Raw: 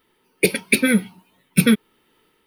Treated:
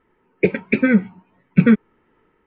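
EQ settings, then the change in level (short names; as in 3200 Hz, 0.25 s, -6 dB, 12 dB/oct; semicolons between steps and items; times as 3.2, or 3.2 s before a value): LPF 2100 Hz 24 dB/oct; air absorption 74 m; low shelf 96 Hz +6.5 dB; +2.0 dB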